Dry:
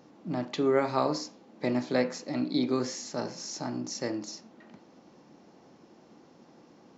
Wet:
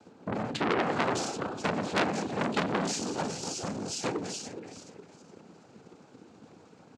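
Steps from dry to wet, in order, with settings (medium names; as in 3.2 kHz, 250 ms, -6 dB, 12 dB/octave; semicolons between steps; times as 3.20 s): backward echo that repeats 208 ms, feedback 54%, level -8 dB; transient shaper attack +10 dB, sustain +6 dB; noise-vocoded speech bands 8; pitch shift -1 st; transformer saturation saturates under 3.1 kHz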